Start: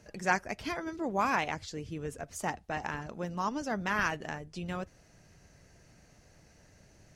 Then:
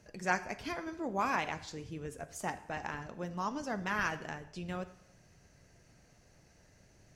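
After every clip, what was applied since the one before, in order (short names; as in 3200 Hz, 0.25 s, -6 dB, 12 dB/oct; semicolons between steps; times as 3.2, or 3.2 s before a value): plate-style reverb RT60 0.79 s, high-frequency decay 0.95×, DRR 11 dB; gain -3.5 dB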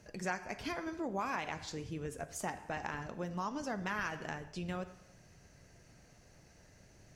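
compressor 3:1, threshold -37 dBFS, peak gain reduction 10 dB; gain +2 dB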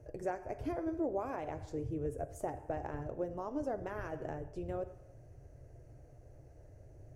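EQ curve 130 Hz 0 dB, 190 Hz -21 dB, 300 Hz -4 dB, 620 Hz -3 dB, 1000 Hz -16 dB, 1500 Hz -18 dB, 4200 Hz -28 dB, 10000 Hz -16 dB; gain +8.5 dB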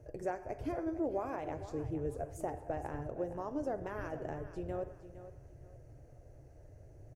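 feedback echo 0.462 s, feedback 30%, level -13.5 dB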